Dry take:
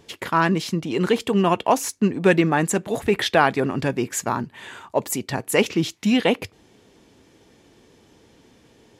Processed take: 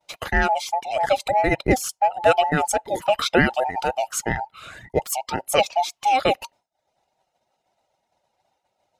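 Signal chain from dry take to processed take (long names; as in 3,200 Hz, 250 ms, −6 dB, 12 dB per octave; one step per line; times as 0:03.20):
frequency inversion band by band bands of 1,000 Hz
reverb reduction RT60 0.6 s
downward expander −44 dBFS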